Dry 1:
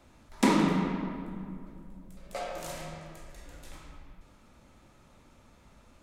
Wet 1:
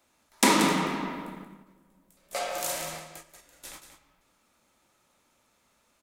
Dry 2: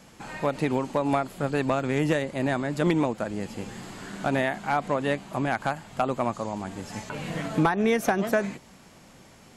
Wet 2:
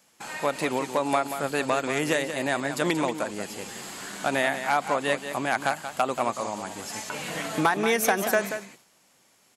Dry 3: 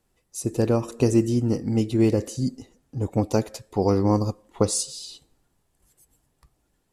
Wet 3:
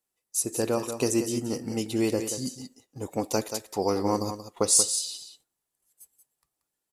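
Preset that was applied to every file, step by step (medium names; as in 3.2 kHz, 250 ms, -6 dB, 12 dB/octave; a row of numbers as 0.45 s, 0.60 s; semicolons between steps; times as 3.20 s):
RIAA curve recording; gate -45 dBFS, range -13 dB; treble shelf 3.9 kHz -5.5 dB; on a send: delay 182 ms -9.5 dB; on the sum: normalise loudness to -27 LUFS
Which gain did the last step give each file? +5.5 dB, +2.0 dB, -1.0 dB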